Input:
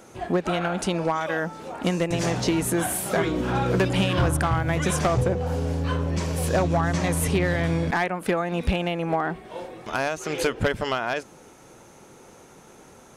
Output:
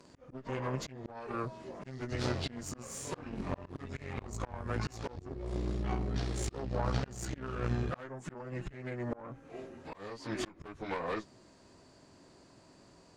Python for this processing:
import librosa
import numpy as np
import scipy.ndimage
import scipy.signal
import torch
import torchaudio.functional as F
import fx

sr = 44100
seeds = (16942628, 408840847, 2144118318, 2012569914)

y = fx.pitch_bins(x, sr, semitones=-5.5)
y = fx.cheby_harmonics(y, sr, harmonics=(2, 3), levels_db=(-7, -18), full_scale_db=-11.5)
y = fx.auto_swell(y, sr, attack_ms=409.0)
y = y * 10.0 ** (-3.5 / 20.0)